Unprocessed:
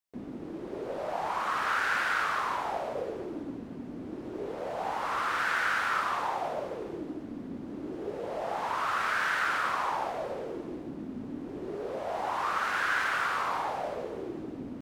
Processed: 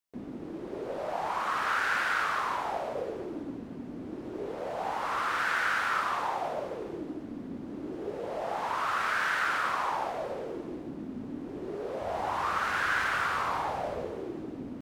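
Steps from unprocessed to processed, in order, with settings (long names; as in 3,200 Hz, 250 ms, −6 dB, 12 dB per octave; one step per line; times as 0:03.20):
0:12.01–0:14.11: parametric band 67 Hz +10 dB 2.3 octaves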